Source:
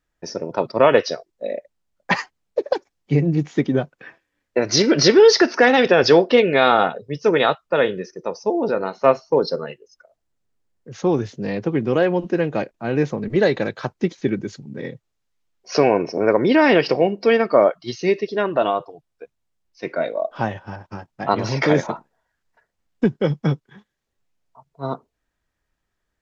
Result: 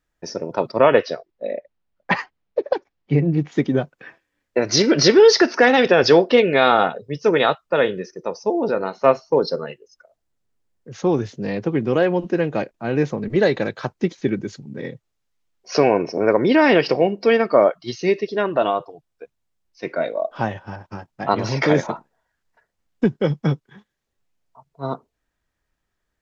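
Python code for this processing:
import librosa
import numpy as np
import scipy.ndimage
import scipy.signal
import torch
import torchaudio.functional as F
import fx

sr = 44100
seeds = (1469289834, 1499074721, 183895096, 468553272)

y = fx.lowpass(x, sr, hz=3500.0, slope=12, at=(0.8, 3.52))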